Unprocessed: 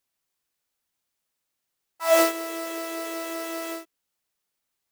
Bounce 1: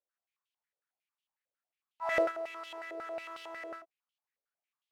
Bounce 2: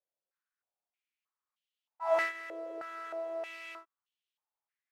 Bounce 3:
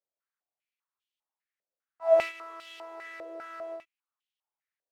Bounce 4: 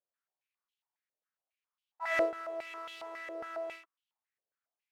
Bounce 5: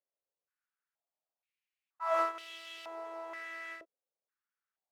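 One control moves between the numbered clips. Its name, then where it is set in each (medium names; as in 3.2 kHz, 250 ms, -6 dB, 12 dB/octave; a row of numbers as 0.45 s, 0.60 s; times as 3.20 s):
step-sequenced band-pass, rate: 11 Hz, 3.2 Hz, 5 Hz, 7.3 Hz, 2.1 Hz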